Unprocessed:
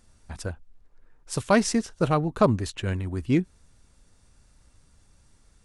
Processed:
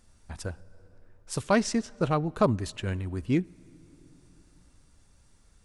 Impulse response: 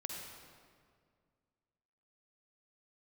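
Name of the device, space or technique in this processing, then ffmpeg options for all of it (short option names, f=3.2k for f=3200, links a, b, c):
compressed reverb return: -filter_complex "[0:a]asplit=2[a][b];[1:a]atrim=start_sample=2205[c];[b][c]afir=irnorm=-1:irlink=0,acompressor=threshold=-40dB:ratio=4,volume=-8.5dB[d];[a][d]amix=inputs=2:normalize=0,asettb=1/sr,asplit=3[e][f][g];[e]atrim=end=1.474[h];[f]atrim=start=1.47:end=2.26,asetpts=PTS-STARTPTS,afade=t=in:d=0.004:c=qsin,afade=t=out:st=0.786:d=0.004:c=qsin,lowpass=8.1k[i];[g]atrim=start=2.256[j];[h][i]acrossfade=d=0.004:c1=hsin:c2=qsin[k];[k][j]acrossfade=d=0.004:c1=qsin:c2=hsin,volume=-3.5dB"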